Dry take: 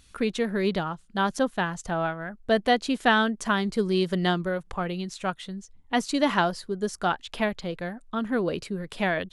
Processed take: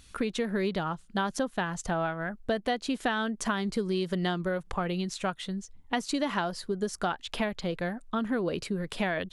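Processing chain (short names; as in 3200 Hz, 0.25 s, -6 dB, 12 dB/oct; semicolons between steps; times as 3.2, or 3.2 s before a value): compressor 6:1, threshold -28 dBFS, peak gain reduction 12 dB; gain +2 dB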